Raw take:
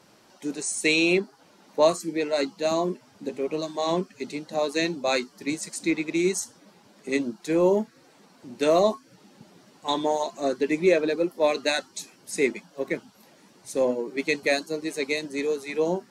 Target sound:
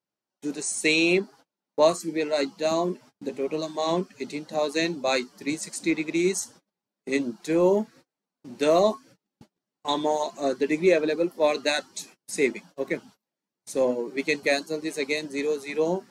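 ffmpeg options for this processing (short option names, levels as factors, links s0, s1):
-af "agate=range=0.02:threshold=0.00447:ratio=16:detection=peak"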